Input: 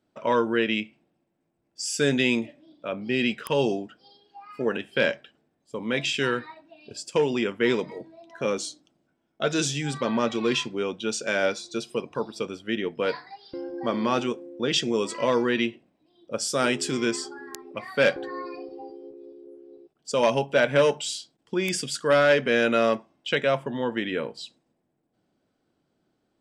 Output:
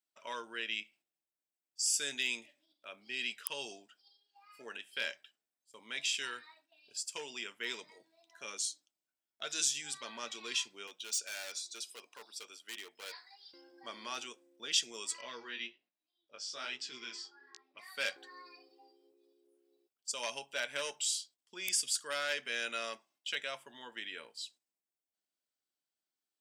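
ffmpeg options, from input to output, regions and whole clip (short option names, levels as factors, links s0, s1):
-filter_complex "[0:a]asettb=1/sr,asplit=3[s0][s1][s2];[s0]atrim=end=10.874[s3];[s1]atrim=start=10.87:end=13.4,asetpts=PTS-STARTPTS,afade=t=in:d=0.004:c=qsin,afade=t=out:st=2.526:d=0.004:c=qsin,highpass=290,asoftclip=type=hard:threshold=0.0473[s4];[s2]atrim=start=13.396[s5];[s3][s4]acrossfade=d=0.004:c1=hsin:c2=qsin[s6];[s6][s5]acrossfade=d=0.004:c1=qsin:c2=hsin,asettb=1/sr,asplit=3[s7][s8][s9];[s7]atrim=end=15.214[s10];[s8]atrim=start=15.21:end=17.79,asetpts=PTS-STARTPTS,afade=t=in:d=0.004:c=qsin,afade=t=out:st=2.576:d=0.004:c=qsin,lowpass=f=4900:w=0.5412,lowpass=f=4900:w=1.3066,flanger=delay=15.5:depth=5.3:speed=1.2[s11];[s9]atrim=start=17.786[s12];[s10][s11]acrossfade=d=0.004:c1=hsin:c2=qsin[s13];[s13][s12]acrossfade=d=0.004:c1=qsin:c2=hsin,agate=range=0.501:threshold=0.00251:ratio=16:detection=peak,aderivative,bandreject=f=510:w=14"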